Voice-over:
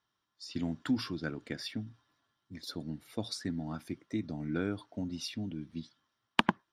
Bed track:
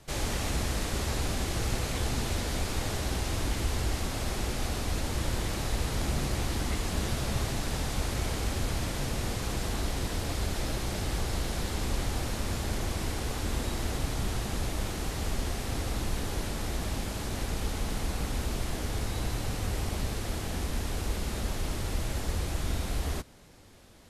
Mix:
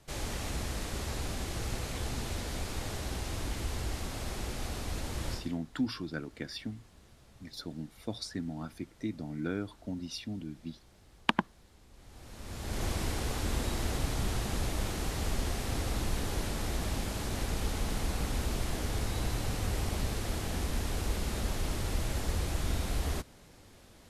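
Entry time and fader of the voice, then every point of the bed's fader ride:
4.90 s, -1.0 dB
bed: 5.33 s -5.5 dB
5.59 s -28 dB
11.90 s -28 dB
12.84 s -1 dB

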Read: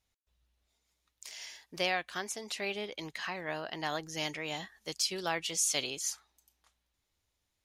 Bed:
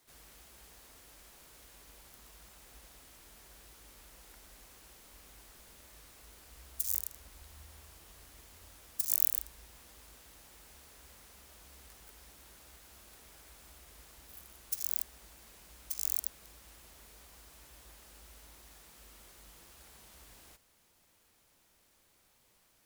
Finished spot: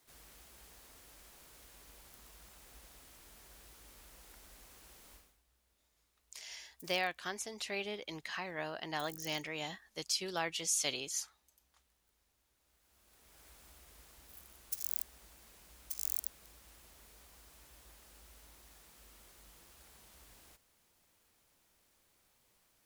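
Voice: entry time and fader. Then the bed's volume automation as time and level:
5.10 s, -3.0 dB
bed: 5.14 s -1.5 dB
5.42 s -22.5 dB
12.54 s -22.5 dB
13.45 s -3.5 dB

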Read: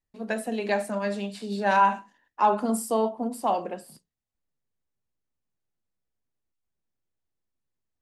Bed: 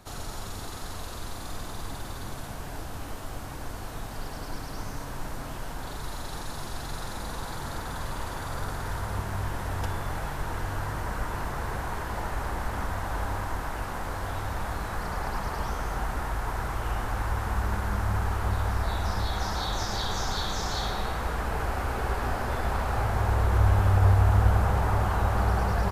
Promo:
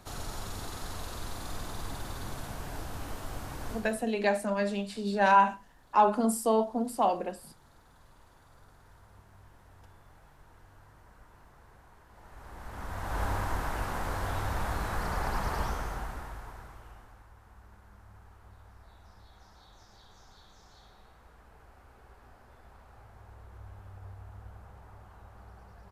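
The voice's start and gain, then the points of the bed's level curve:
3.55 s, -1.0 dB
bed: 3.73 s -2 dB
4.14 s -25 dB
12.08 s -25 dB
13.23 s -0.5 dB
15.61 s -0.5 dB
17.29 s -27 dB

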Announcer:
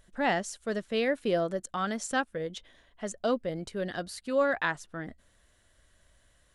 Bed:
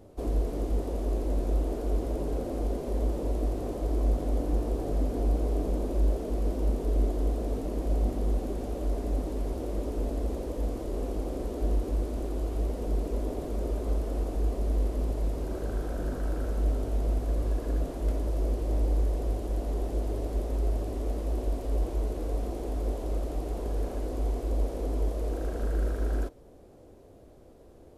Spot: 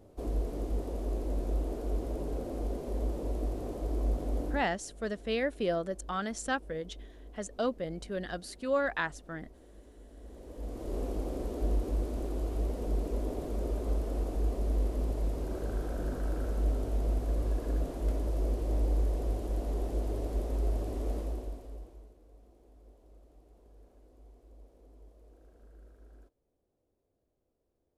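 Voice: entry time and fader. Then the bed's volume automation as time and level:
4.35 s, -3.0 dB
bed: 4.48 s -4.5 dB
4.77 s -23 dB
10.08 s -23 dB
10.93 s -2.5 dB
21.18 s -2.5 dB
22.19 s -27 dB

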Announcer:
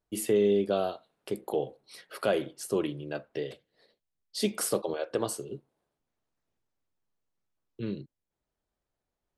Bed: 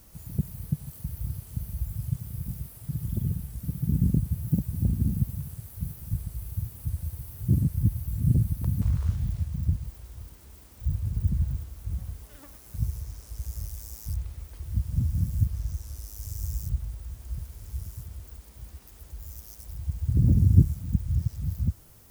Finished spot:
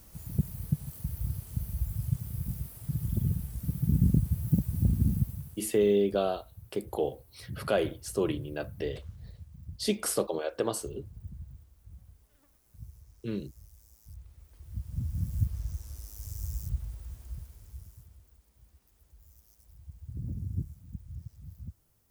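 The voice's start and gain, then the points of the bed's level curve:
5.45 s, 0.0 dB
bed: 5.13 s -0.5 dB
6.03 s -18 dB
14.00 s -18 dB
15.38 s -4 dB
17.14 s -4 dB
18.33 s -16.5 dB

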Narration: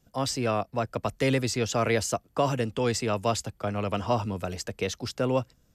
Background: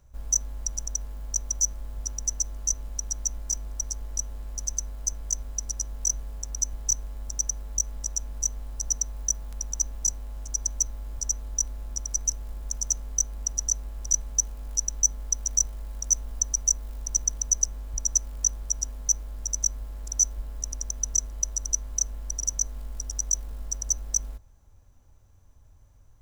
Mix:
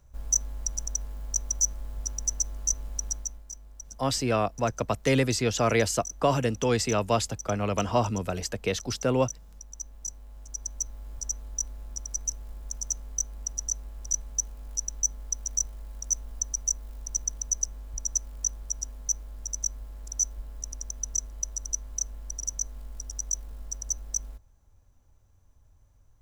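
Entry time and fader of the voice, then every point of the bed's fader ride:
3.85 s, +1.5 dB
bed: 3.11 s -0.5 dB
3.46 s -13 dB
9.66 s -13 dB
11.11 s -4.5 dB

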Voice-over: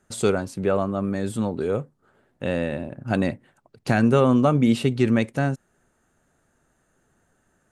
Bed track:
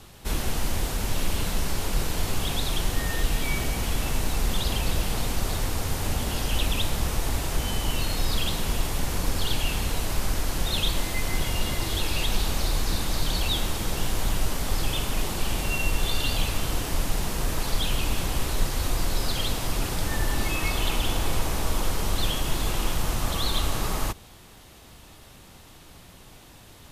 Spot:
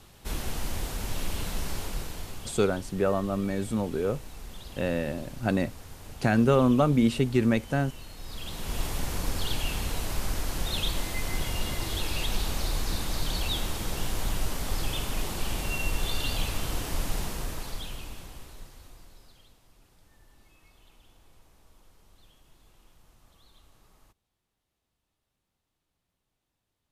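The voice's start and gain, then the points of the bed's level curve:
2.35 s, -3.5 dB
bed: 1.77 s -5.5 dB
2.68 s -17.5 dB
8.17 s -17.5 dB
8.82 s -4 dB
17.20 s -4 dB
19.63 s -33.5 dB

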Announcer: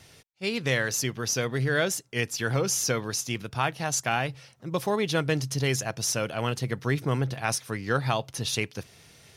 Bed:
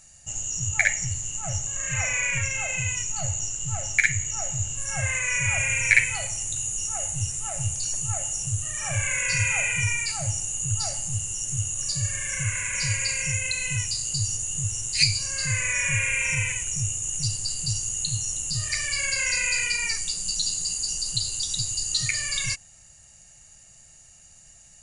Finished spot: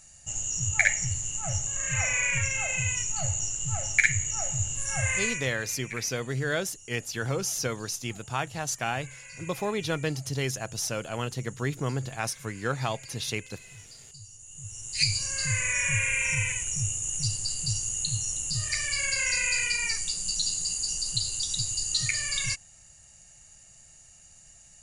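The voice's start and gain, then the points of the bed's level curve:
4.75 s, -3.5 dB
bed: 5.25 s -1 dB
5.53 s -21 dB
14.33 s -21 dB
15.15 s -2 dB

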